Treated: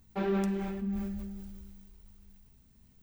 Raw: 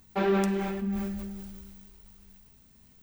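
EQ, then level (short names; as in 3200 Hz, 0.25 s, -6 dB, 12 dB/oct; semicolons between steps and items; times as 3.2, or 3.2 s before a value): low shelf 230 Hz +9 dB; -8.0 dB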